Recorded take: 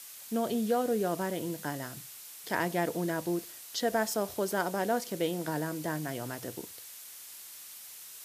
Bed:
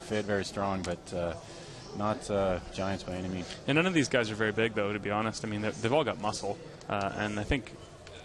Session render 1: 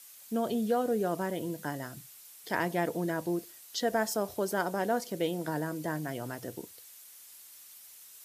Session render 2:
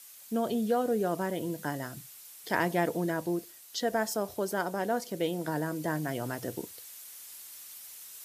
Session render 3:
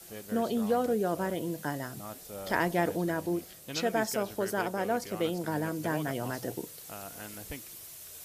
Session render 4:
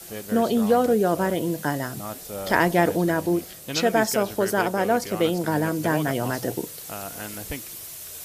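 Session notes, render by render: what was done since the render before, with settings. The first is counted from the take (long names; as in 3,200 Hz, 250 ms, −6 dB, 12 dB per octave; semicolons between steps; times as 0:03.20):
broadband denoise 7 dB, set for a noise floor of −48 dBFS
speech leveller within 5 dB 2 s
mix in bed −13 dB
level +8.5 dB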